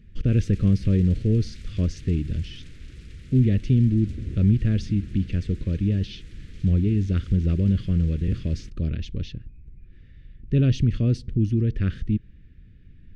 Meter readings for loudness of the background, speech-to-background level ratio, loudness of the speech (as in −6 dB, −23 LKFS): −42.5 LKFS, 18.5 dB, −24.0 LKFS